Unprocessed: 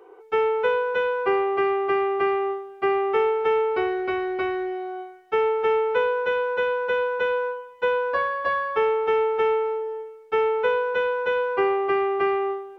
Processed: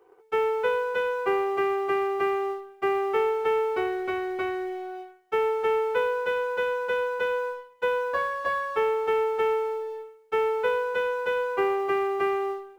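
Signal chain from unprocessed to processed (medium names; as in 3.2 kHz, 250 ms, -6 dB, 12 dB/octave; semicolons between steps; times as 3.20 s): companding laws mixed up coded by A; trim -2.5 dB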